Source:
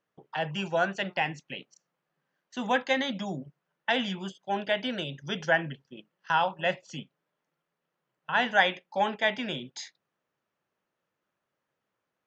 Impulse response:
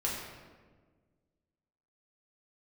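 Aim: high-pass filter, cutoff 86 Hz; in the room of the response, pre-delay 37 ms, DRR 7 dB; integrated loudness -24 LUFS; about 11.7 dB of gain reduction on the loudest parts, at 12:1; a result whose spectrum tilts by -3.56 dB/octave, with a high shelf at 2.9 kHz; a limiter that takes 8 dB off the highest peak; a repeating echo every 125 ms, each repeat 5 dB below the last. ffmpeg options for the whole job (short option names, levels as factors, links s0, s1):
-filter_complex "[0:a]highpass=86,highshelf=f=2900:g=7,acompressor=threshold=0.0447:ratio=12,alimiter=limit=0.0708:level=0:latency=1,aecho=1:1:125|250|375|500|625|750|875:0.562|0.315|0.176|0.0988|0.0553|0.031|0.0173,asplit=2[s0][s1];[1:a]atrim=start_sample=2205,adelay=37[s2];[s1][s2]afir=irnorm=-1:irlink=0,volume=0.237[s3];[s0][s3]amix=inputs=2:normalize=0,volume=2.99"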